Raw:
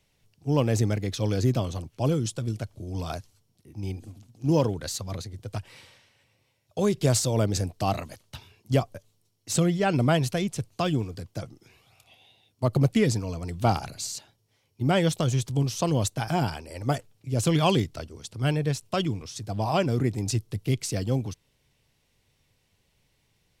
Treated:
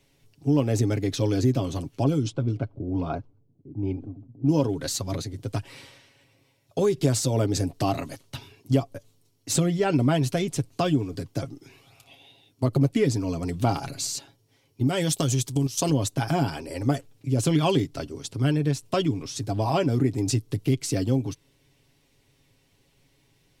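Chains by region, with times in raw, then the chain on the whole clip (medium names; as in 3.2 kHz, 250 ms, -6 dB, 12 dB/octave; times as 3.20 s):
2.04–4.65 s: Butterworth band-stop 1.8 kHz, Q 5.7 + level-controlled noise filter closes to 380 Hz, open at -20 dBFS
14.87–15.90 s: treble shelf 3.8 kHz +11.5 dB + level held to a coarse grid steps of 13 dB
whole clip: peaking EQ 310 Hz +8 dB 0.7 oct; comb 7.3 ms, depth 51%; compression 2:1, threshold -26 dBFS; trim +3 dB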